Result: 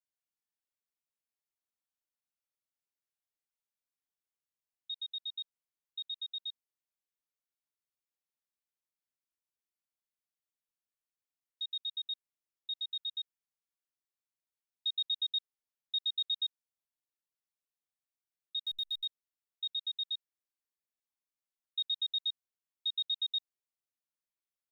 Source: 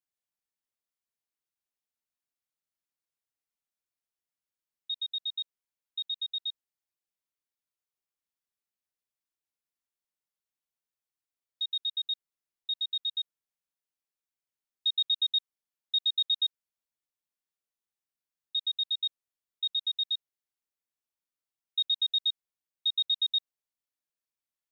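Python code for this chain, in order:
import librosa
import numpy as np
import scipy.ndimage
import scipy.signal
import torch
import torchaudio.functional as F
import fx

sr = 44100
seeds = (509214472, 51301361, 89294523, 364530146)

y = fx.delta_hold(x, sr, step_db=-45.0, at=(18.62, 19.05))
y = F.gain(torch.from_numpy(y), -6.0).numpy()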